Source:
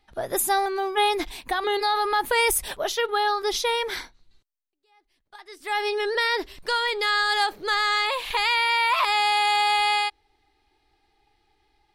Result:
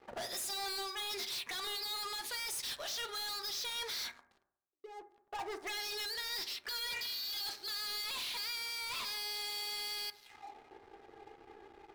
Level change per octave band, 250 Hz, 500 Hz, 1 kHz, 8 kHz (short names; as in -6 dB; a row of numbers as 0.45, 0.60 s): -18.0, -21.0, -22.5, -9.5 dB